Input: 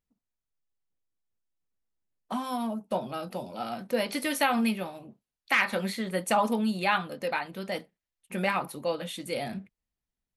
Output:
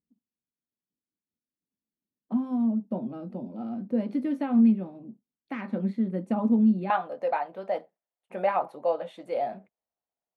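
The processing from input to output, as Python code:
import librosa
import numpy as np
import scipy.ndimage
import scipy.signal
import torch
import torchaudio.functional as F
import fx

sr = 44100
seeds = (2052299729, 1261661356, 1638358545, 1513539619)

y = fx.bandpass_q(x, sr, hz=fx.steps((0.0, 240.0), (6.9, 680.0)), q=2.6)
y = y * 10.0 ** (8.5 / 20.0)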